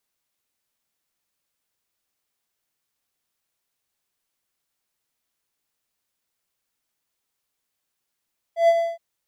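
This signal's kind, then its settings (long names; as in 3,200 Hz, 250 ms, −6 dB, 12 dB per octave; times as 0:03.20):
note with an ADSR envelope triangle 672 Hz, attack 122 ms, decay 52 ms, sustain −7 dB, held 0.22 s, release 199 ms −9 dBFS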